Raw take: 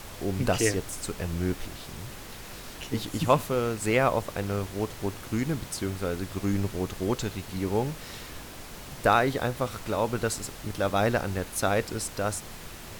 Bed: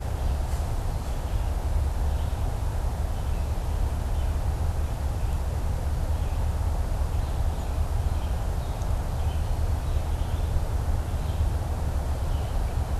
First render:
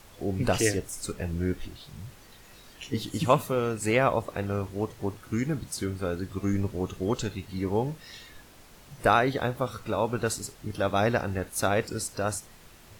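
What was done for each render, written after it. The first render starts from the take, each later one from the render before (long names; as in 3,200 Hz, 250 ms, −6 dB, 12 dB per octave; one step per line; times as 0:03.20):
noise reduction from a noise print 10 dB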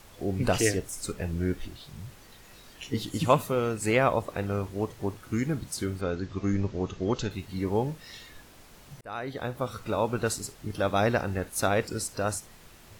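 0:06.01–0:07.31: Butterworth low-pass 6,800 Hz 48 dB per octave
0:09.01–0:09.78: fade in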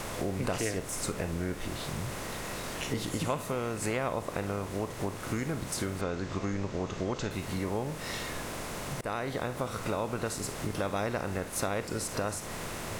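compressor on every frequency bin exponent 0.6
downward compressor 3 to 1, threshold −31 dBFS, peak gain reduction 13 dB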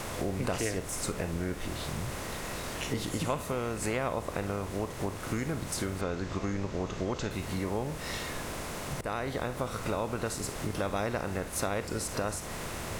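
mix in bed −22 dB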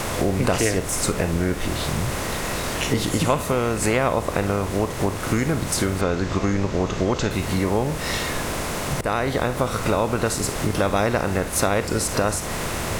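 level +11 dB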